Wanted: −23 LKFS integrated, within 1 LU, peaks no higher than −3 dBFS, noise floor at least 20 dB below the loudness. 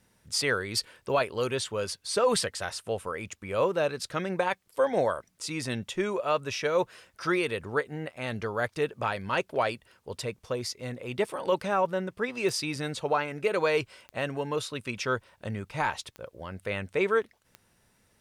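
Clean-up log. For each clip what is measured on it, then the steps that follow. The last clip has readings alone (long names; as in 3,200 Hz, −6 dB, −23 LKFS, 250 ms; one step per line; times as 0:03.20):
number of clicks 4; integrated loudness −30.0 LKFS; sample peak −15.5 dBFS; target loudness −23.0 LKFS
→ click removal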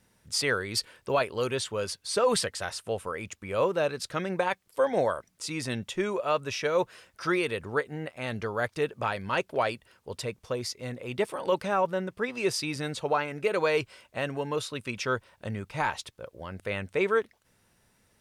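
number of clicks 0; integrated loudness −30.0 LKFS; sample peak −15.5 dBFS; target loudness −23.0 LKFS
→ level +7 dB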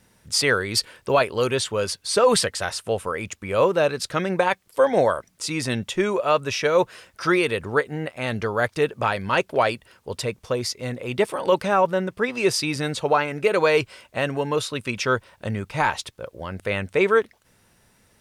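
integrated loudness −23.0 LKFS; sample peak −8.5 dBFS; background noise floor −61 dBFS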